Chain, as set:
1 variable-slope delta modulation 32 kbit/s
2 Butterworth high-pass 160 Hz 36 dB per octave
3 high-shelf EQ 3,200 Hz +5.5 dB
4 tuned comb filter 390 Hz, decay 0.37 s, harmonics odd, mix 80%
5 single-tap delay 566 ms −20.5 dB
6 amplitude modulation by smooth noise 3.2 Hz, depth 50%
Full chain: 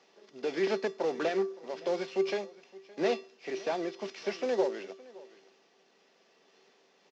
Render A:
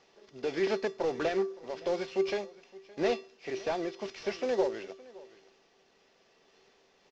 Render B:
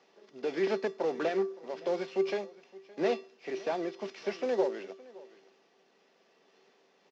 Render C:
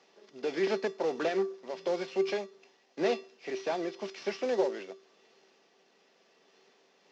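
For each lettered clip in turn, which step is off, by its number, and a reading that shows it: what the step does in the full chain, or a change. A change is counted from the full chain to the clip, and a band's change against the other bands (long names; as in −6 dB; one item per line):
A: 2, 125 Hz band +2.0 dB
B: 3, 4 kHz band −3.0 dB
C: 5, change in momentary loudness spread −5 LU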